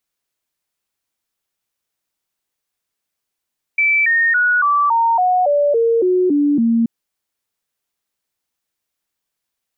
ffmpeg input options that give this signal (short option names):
-f lavfi -i "aevalsrc='0.266*clip(min(mod(t,0.28),0.28-mod(t,0.28))/0.005,0,1)*sin(2*PI*2320*pow(2,-floor(t/0.28)/3)*mod(t,0.28))':d=3.08:s=44100"